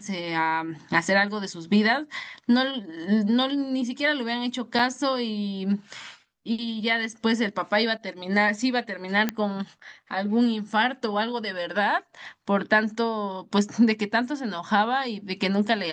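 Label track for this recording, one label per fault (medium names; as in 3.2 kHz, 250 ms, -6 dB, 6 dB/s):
4.790000	4.790000	dropout 4.3 ms
9.290000	9.290000	pop -10 dBFS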